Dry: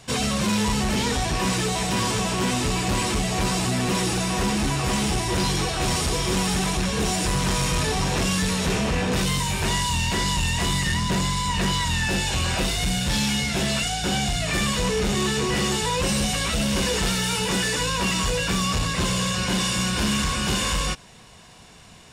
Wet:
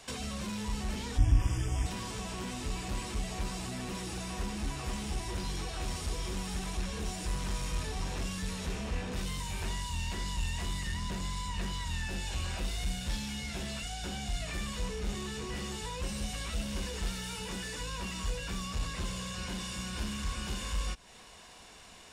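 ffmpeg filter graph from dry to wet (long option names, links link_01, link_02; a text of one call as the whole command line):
ffmpeg -i in.wav -filter_complex "[0:a]asettb=1/sr,asplit=3[link_01][link_02][link_03];[link_01]atrim=end=1.184[link_04];[link_02]atrim=start=1.18:end=1.86,asetpts=PTS-STARTPTS,afade=type=in:duration=0.004:curve=qsin,afade=type=out:start_time=0.676:duration=0.004:curve=qsin,lowshelf=frequency=150:width_type=q:width=3:gain=13,tremolo=f=200:d=0.621,asuperstop=centerf=4100:order=20:qfactor=3.5[link_05];[link_03]atrim=start=1.856[link_06];[link_04][link_05]acrossfade=duration=0.004:curve1=hsin:curve2=qsin[link_07];[link_07][link_06]acrossfade=duration=0.004:curve1=qsin:curve2=hsin,acrossover=split=190[link_08][link_09];[link_09]acompressor=threshold=-36dB:ratio=5[link_10];[link_08][link_10]amix=inputs=2:normalize=0,equalizer=frequency=130:width_type=o:width=1.3:gain=-12.5,volume=-3.5dB" out.wav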